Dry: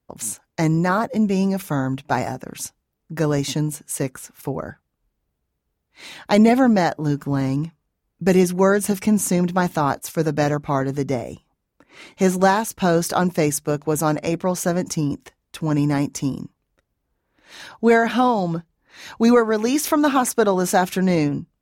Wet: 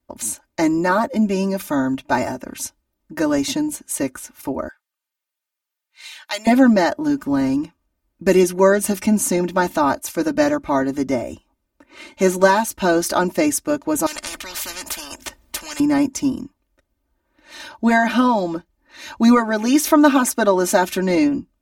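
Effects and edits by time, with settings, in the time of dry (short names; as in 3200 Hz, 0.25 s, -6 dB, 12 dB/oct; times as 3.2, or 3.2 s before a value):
4.68–6.47 Bessel high-pass 1900 Hz
14.06–15.8 spectral compressor 10:1
whole clip: comb 3.3 ms, depth 89%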